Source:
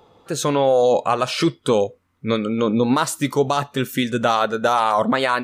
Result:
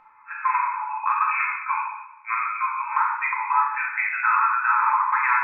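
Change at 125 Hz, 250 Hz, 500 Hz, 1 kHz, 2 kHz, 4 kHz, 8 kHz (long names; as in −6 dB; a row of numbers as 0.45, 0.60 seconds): below −40 dB, below −40 dB, below −40 dB, +1.0 dB, +4.5 dB, below −35 dB, below −40 dB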